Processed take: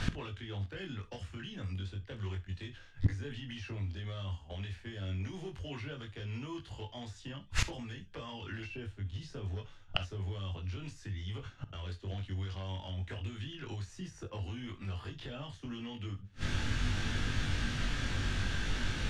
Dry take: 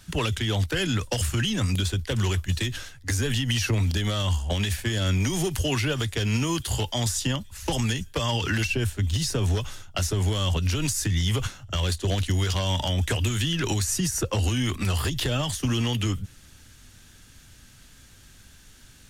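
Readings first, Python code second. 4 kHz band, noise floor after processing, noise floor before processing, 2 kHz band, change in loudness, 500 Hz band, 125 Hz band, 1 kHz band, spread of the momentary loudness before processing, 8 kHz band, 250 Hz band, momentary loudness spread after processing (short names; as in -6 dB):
-14.5 dB, -55 dBFS, -52 dBFS, -10.0 dB, -14.0 dB, -15.0 dB, -12.5 dB, -13.0 dB, 4 LU, -20.5 dB, -13.5 dB, 9 LU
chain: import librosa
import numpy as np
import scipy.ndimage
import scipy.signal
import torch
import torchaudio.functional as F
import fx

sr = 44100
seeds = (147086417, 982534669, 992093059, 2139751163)

y = scipy.signal.sosfilt(scipy.signal.butter(2, 3200.0, 'lowpass', fs=sr, output='sos'), x)
y = fx.doubler(y, sr, ms=21.0, db=-2.5)
y = fx.gate_flip(y, sr, shuts_db=-32.0, range_db=-35)
y = fx.rev_gated(y, sr, seeds[0], gate_ms=90, shape='flat', drr_db=12.0)
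y = y * 10.0 ** (16.5 / 20.0)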